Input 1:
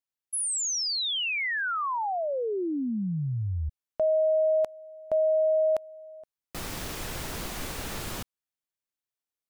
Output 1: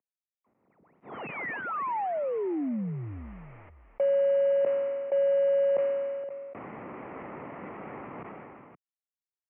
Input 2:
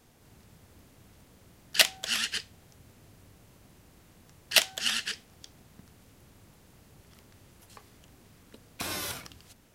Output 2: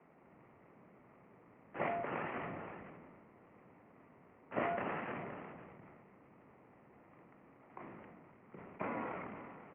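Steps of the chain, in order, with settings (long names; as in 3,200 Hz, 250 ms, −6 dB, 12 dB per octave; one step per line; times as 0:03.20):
variable-slope delta modulation 16 kbit/s
single-sideband voice off tune −73 Hz 240–2,100 Hz
parametric band 1,600 Hz −11 dB 0.37 octaves
on a send: single-tap delay 521 ms −20.5 dB
on the sum: level that may fall only so fast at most 24 dB per second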